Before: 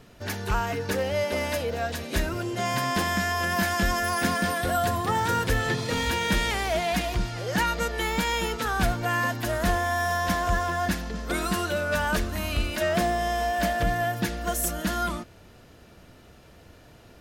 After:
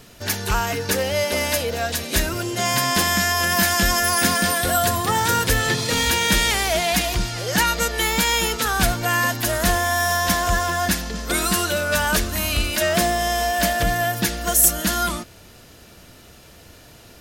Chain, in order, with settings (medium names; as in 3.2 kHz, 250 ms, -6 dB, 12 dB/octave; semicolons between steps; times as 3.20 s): treble shelf 3.3 kHz +11.5 dB; trim +3.5 dB